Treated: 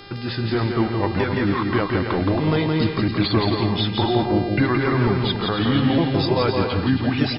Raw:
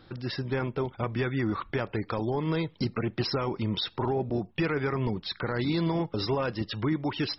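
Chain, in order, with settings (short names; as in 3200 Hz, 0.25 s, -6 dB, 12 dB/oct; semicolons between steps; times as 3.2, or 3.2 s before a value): repeated pitch sweeps -4 st, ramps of 1.196 s; buzz 400 Hz, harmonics 13, -52 dBFS -2 dB/oct; bouncing-ball echo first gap 0.17 s, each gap 0.6×, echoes 5; gain +8.5 dB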